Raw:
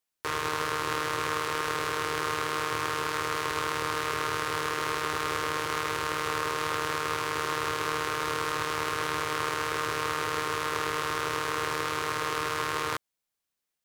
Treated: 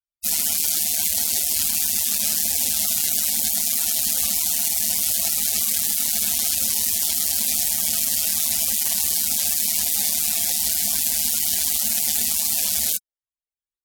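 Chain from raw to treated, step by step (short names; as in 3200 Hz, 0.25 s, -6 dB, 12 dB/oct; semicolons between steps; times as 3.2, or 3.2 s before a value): HPF 130 Hz 12 dB/oct; spectral gate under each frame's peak -30 dB weak; maximiser +36 dB; gain -1 dB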